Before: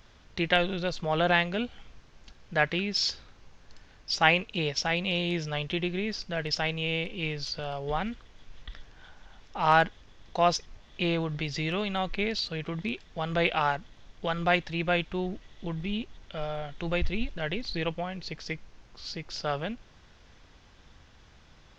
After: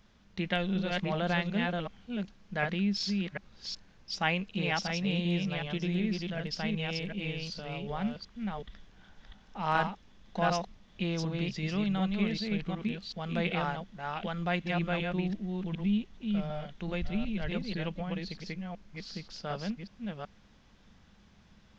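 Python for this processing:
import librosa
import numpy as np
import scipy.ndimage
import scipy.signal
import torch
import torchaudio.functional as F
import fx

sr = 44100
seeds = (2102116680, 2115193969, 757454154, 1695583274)

y = fx.reverse_delay(x, sr, ms=375, wet_db=-2.5)
y = fx.peak_eq(y, sr, hz=200.0, db=14.0, octaves=0.42)
y = F.gain(torch.from_numpy(y), -8.0).numpy()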